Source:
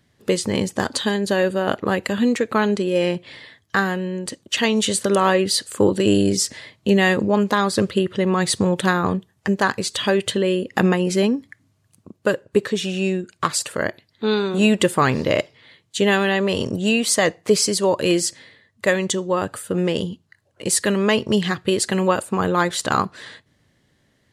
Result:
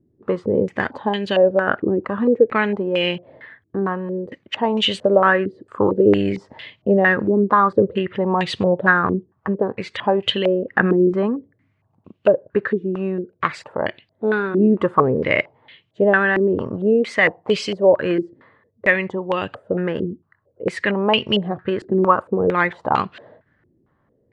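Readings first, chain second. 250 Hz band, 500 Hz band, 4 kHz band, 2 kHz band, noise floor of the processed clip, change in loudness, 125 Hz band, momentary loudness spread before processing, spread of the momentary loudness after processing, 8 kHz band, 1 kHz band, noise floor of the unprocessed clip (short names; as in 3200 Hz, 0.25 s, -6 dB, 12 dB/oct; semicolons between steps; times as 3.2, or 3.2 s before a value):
-0.5 dB, +2.5 dB, -2.0 dB, +3.0 dB, -66 dBFS, +1.0 dB, -1.5 dB, 8 LU, 10 LU, under -20 dB, +2.5 dB, -64 dBFS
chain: stepped low-pass 4.4 Hz 350–2900 Hz; gain -2.5 dB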